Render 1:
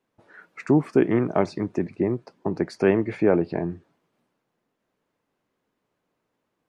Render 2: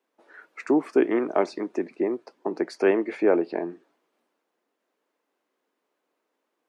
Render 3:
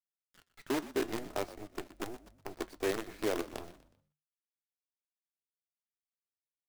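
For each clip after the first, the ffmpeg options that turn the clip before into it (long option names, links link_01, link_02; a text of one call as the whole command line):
ffmpeg -i in.wav -af "highpass=frequency=280:width=0.5412,highpass=frequency=280:width=1.3066" out.wav
ffmpeg -i in.wav -filter_complex "[0:a]acrusher=bits=4:dc=4:mix=0:aa=0.000001,flanger=delay=3.3:depth=7:regen=-73:speed=0.47:shape=triangular,asplit=4[link_01][link_02][link_03][link_04];[link_02]adelay=122,afreqshift=-50,volume=-16dB[link_05];[link_03]adelay=244,afreqshift=-100,volume=-24.2dB[link_06];[link_04]adelay=366,afreqshift=-150,volume=-32.4dB[link_07];[link_01][link_05][link_06][link_07]amix=inputs=4:normalize=0,volume=-9dB" out.wav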